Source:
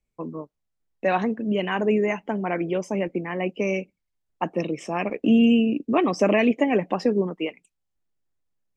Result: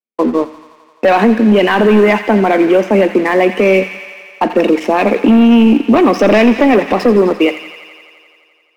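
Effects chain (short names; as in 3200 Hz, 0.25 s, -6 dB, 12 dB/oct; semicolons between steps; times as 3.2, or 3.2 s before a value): LPF 3400 Hz 12 dB/oct; gate with hold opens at -43 dBFS; elliptic high-pass 210 Hz, stop band 40 dB; sample leveller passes 2; compressor, threshold -18 dBFS, peak gain reduction 6.5 dB; thin delay 86 ms, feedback 78%, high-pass 1400 Hz, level -11.5 dB; on a send at -15.5 dB: reverb RT60 0.55 s, pre-delay 4 ms; on the sum: maximiser +16 dB; gain -2 dB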